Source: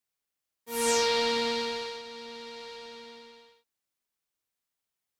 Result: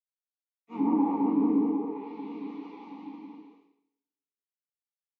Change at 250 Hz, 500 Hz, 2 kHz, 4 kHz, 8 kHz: +15.0 dB, −7.5 dB, below −20 dB, below −30 dB, below −40 dB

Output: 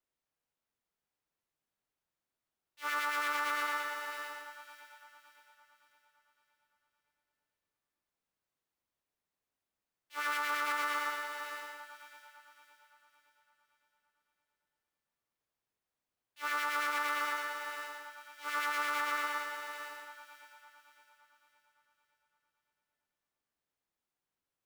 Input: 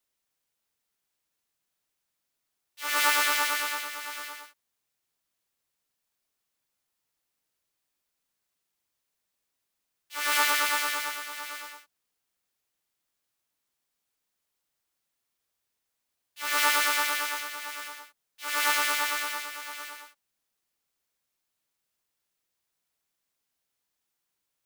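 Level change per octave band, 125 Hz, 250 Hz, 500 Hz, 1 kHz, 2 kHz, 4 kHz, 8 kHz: can't be measured, −4.5 dB, −5.0 dB, −4.0 dB, −6.5 dB, −12.5 dB, −16.0 dB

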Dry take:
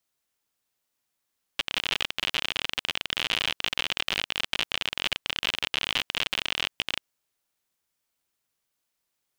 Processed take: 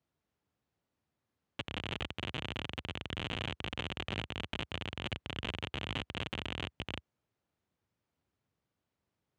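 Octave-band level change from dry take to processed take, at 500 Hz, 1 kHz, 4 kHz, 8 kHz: −2.5, −7.5, −14.0, −19.0 decibels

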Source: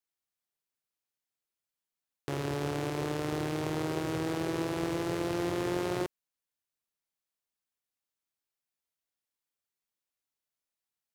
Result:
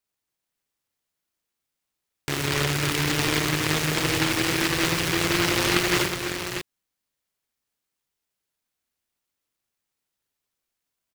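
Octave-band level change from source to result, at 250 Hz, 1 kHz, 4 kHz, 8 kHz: +6.0, +8.5, +18.5, +18.5 decibels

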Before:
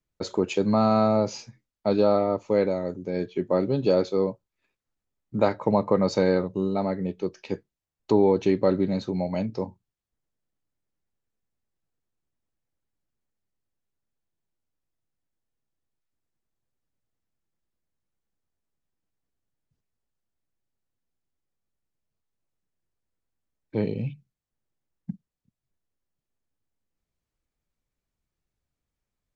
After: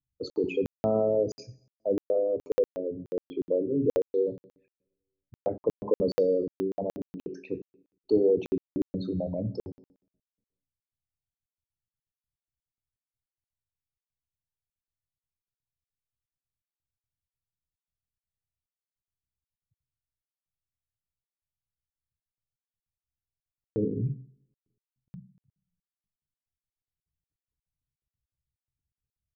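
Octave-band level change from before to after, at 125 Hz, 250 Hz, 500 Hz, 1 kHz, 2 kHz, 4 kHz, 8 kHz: −6.5 dB, −6.5 dB, −3.5 dB, −13.5 dB, below −10 dB, −10.0 dB, can't be measured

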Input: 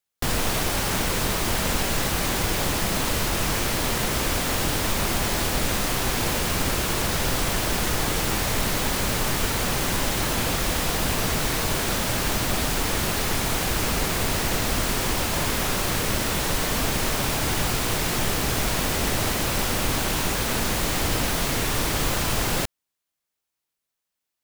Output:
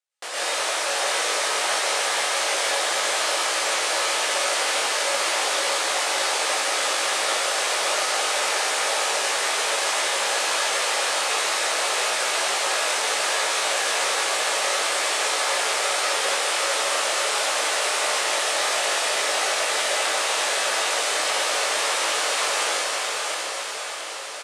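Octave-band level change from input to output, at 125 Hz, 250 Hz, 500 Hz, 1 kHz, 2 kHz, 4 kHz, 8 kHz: below −35 dB, −16.0 dB, +2.5 dB, +4.0 dB, +5.0 dB, +4.5 dB, +3.5 dB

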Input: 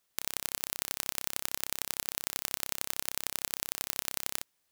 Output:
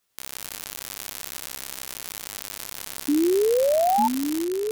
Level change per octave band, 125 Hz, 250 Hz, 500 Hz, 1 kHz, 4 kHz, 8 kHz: +2.5, +26.0, +26.5, +19.0, +1.0, +1.0 decibels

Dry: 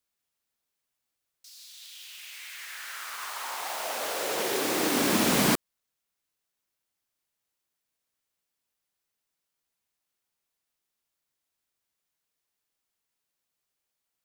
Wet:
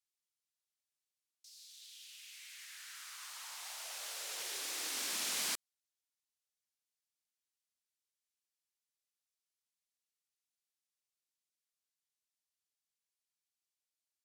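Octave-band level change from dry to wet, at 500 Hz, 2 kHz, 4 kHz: −25.0, −13.5, −8.5 decibels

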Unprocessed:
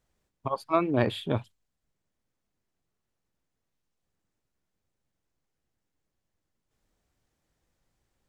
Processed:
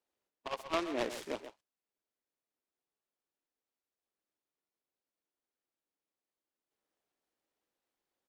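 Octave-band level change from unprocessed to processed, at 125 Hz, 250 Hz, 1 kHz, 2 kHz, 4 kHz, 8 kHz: −25.5 dB, −11.5 dB, −9.0 dB, −5.0 dB, −4.0 dB, can't be measured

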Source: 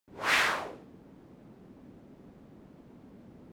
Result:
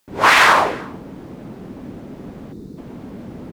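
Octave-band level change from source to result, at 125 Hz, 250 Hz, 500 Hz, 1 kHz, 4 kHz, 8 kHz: +17.5, +17.5, +17.5, +19.5, +13.0, +13.0 decibels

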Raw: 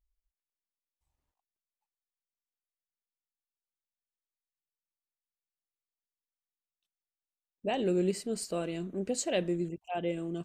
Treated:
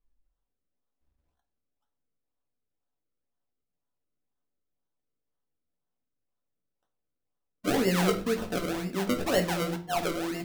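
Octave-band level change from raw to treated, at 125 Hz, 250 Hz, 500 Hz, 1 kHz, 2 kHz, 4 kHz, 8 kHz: +5.0, +4.0, +3.0, +7.5, +10.0, +7.0, +1.0 decibels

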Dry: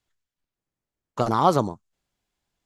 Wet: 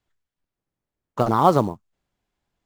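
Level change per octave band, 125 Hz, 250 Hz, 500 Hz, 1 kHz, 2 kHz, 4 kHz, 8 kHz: +3.0, +3.0, +3.0, +2.5, +1.5, −1.5, −2.0 decibels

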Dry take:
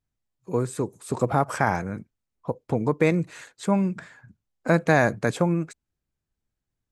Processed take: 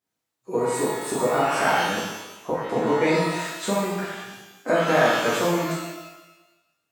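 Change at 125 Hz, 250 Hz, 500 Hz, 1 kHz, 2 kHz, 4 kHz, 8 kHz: −6.0, −1.5, +3.0, +4.0, +3.0, +12.5, +8.5 decibels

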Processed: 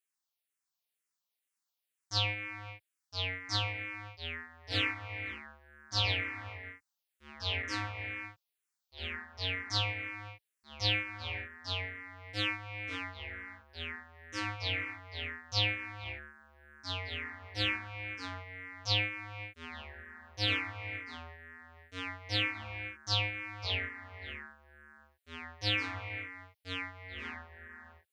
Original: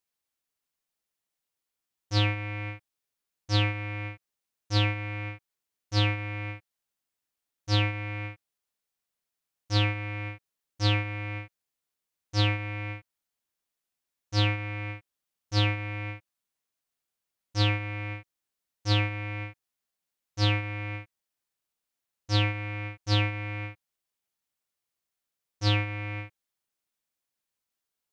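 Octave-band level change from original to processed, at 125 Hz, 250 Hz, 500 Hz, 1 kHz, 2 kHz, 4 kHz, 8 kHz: −12.5 dB, −10.0 dB, −6.5 dB, −4.5 dB, −1.0 dB, −0.5 dB, can't be measured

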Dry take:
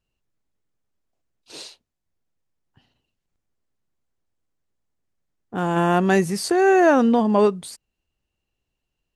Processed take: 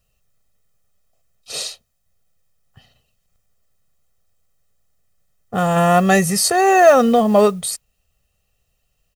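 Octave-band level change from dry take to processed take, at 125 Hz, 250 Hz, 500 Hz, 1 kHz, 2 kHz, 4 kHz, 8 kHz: +4.5, +1.5, +4.5, +6.0, +4.0, +9.0, +13.0 decibels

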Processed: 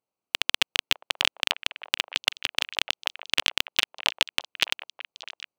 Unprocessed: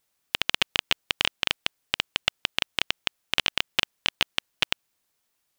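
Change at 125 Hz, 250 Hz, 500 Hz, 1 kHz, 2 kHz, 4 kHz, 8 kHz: −7.5, −4.0, −2.0, −1.0, +0.5, +1.5, +4.0 decibels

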